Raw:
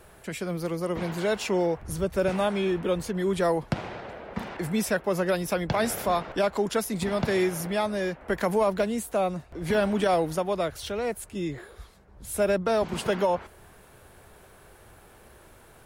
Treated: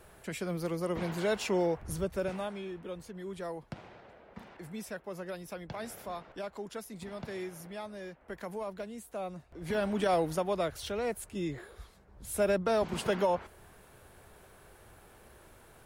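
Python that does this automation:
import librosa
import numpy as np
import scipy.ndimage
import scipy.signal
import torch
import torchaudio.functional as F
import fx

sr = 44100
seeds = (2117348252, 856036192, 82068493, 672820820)

y = fx.gain(x, sr, db=fx.line((1.92, -4.0), (2.68, -15.0), (8.94, -15.0), (10.18, -4.0)))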